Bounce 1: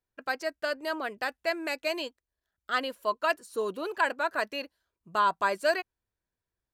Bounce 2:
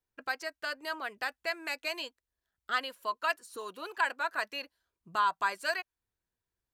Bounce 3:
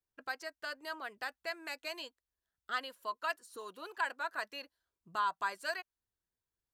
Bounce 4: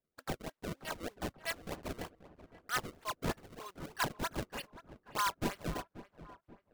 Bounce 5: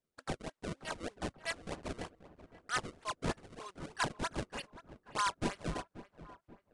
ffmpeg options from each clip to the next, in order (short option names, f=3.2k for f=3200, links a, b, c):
-filter_complex "[0:a]bandreject=f=600:w=12,acrossover=split=740[a][b];[a]acompressor=threshold=-46dB:ratio=5[c];[c][b]amix=inputs=2:normalize=0,volume=-1.5dB"
-af "equalizer=f=2.4k:w=3.6:g=-3.5,volume=-5dB"
-filter_complex "[0:a]highpass=f=1.1k:p=1,acrusher=samples=30:mix=1:aa=0.000001:lfo=1:lforange=48:lforate=3.2,asplit=2[a][b];[b]adelay=533,lowpass=f=1.8k:p=1,volume=-15dB,asplit=2[c][d];[d]adelay=533,lowpass=f=1.8k:p=1,volume=0.48,asplit=2[e][f];[f]adelay=533,lowpass=f=1.8k:p=1,volume=0.48,asplit=2[g][h];[h]adelay=533,lowpass=f=1.8k:p=1,volume=0.48[i];[a][c][e][g][i]amix=inputs=5:normalize=0,volume=3dB"
-af "aresample=22050,aresample=44100"